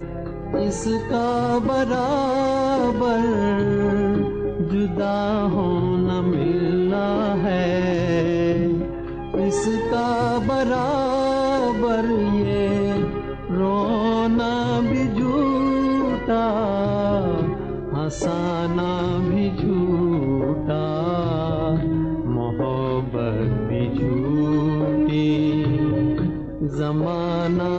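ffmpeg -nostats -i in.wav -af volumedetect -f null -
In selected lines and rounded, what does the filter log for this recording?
mean_volume: -20.8 dB
max_volume: -11.0 dB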